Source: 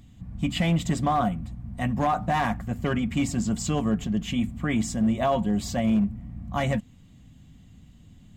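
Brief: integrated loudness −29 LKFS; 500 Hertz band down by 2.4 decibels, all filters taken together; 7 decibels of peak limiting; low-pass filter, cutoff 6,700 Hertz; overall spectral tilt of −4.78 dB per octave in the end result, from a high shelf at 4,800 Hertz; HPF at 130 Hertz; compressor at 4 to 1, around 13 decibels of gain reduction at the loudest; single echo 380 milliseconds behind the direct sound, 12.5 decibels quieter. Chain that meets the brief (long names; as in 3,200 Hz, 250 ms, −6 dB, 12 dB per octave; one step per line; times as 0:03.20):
high-pass filter 130 Hz
low-pass filter 6,700 Hz
parametric band 500 Hz −3.5 dB
high-shelf EQ 4,800 Hz +8 dB
downward compressor 4 to 1, threshold −37 dBFS
brickwall limiter −32 dBFS
single-tap delay 380 ms −12.5 dB
level +12 dB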